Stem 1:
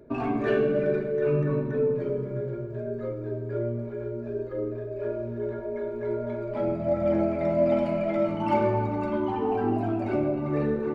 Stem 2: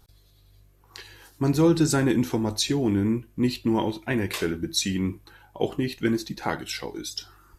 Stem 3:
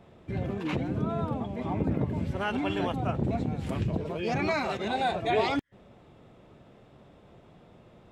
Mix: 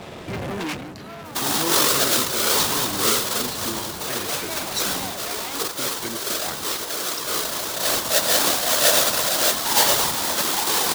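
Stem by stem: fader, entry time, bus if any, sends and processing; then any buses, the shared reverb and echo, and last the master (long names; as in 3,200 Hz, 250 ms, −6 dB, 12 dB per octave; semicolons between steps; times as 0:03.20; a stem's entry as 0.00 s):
−7.5 dB, 1.25 s, no send, each half-wave held at its own peak; drawn EQ curve 320 Hz 0 dB, 1,000 Hz +11 dB, 2,400 Hz +5 dB, 3,600 Hz +14 dB; random phases in short frames
−7.5 dB, 0.00 s, no send, downward expander −46 dBFS
+2.0 dB, 0.00 s, no send, downward compressor 6 to 1, threshold −33 dBFS, peak gain reduction 12 dB; leveller curve on the samples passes 5; automatic ducking −10 dB, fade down 0.30 s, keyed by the second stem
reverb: not used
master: spectral tilt +2 dB per octave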